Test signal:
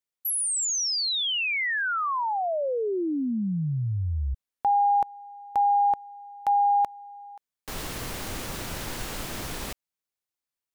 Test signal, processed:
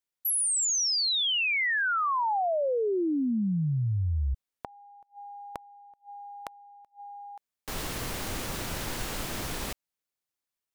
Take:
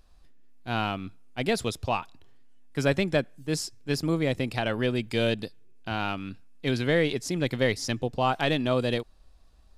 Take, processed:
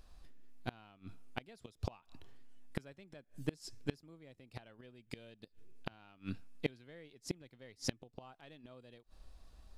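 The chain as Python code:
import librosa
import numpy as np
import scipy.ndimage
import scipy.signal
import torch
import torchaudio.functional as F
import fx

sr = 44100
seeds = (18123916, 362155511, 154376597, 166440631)

y = fx.gate_flip(x, sr, shuts_db=-21.0, range_db=-31)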